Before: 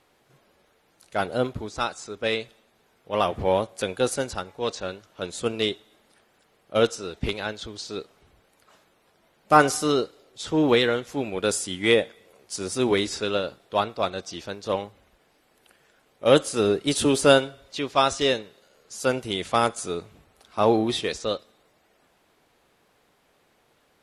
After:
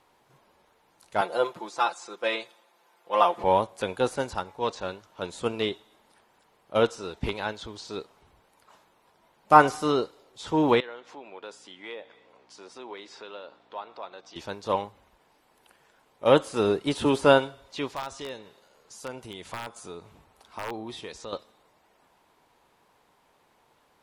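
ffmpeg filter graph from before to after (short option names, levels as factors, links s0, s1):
-filter_complex "[0:a]asettb=1/sr,asplit=3[s0][s1][s2];[s0]atrim=end=1.214[s3];[s1]atrim=start=1.21:end=3.44,asetpts=PTS-STARTPTS,afade=t=in:d=0.004:c=qsin,afade=t=out:st=2.226:d=0.004:c=qsin,highpass=380,aecho=1:1:5.8:0.74,atrim=end_sample=98343[s4];[s2]atrim=start=3.436[s5];[s3][s4]acrossfade=d=0.004:c1=hsin:c2=qsin[s6];[s6][s5]acrossfade=d=0.004:c1=qsin:c2=hsin,asettb=1/sr,asplit=3[s7][s8][s9];[s7]atrim=end=10.804[s10];[s8]atrim=start=10.8:end=14.36,asetpts=PTS-STARTPTS,afade=t=in:d=0.004:c=qsin,afade=t=out:st=3.556:d=0.004:c=qsin,acompressor=threshold=0.01:ratio=2.5:attack=3.2:release=140:knee=1:detection=peak,aeval=exprs='val(0)+0.00355*(sin(2*PI*60*n/s)+sin(2*PI*2*60*n/s)/2+sin(2*PI*3*60*n/s)/3+sin(2*PI*4*60*n/s)/4+sin(2*PI*5*60*n/s)/5)':c=same,highpass=400,lowpass=4100[s11];[s9]atrim=start=14.356[s12];[s10][s11]acrossfade=d=0.004:c1=hsin:c2=qsin[s13];[s13][s12]acrossfade=d=0.004:c1=qsin:c2=hsin,asettb=1/sr,asplit=3[s14][s15][s16];[s14]atrim=end=17.884[s17];[s15]atrim=start=17.88:end=21.33,asetpts=PTS-STARTPTS,afade=t=in:d=0.004:c=qsin,afade=t=out:st=3.446:d=0.004:c=qsin,acompressor=threshold=0.00891:ratio=2:attack=3.2:release=140:knee=1:detection=peak,aeval=exprs='(mod(15*val(0)+1,2)-1)/15':c=same[s18];[s16]atrim=start=21.326[s19];[s17][s18]acrossfade=d=0.004:c1=hsin:c2=qsin[s20];[s20][s19]acrossfade=d=0.004:c1=qsin:c2=hsin,equalizer=f=940:t=o:w=0.45:g=9.5,acrossover=split=3500[s21][s22];[s22]acompressor=threshold=0.0112:ratio=4:attack=1:release=60[s23];[s21][s23]amix=inputs=2:normalize=0,volume=0.75"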